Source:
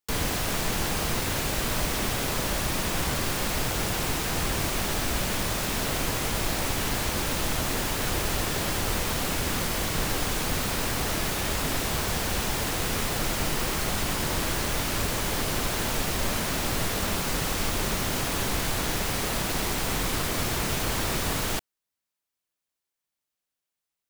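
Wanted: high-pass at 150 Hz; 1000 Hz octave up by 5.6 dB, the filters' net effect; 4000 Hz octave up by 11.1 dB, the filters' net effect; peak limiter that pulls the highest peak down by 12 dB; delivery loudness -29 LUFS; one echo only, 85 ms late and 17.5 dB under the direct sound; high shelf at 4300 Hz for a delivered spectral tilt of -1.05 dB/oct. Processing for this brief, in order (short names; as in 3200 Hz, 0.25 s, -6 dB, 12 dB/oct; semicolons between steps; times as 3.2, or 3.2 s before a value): HPF 150 Hz; bell 1000 Hz +6 dB; bell 4000 Hz +9 dB; high shelf 4300 Hz +8 dB; limiter -20 dBFS; echo 85 ms -17.5 dB; gain -2 dB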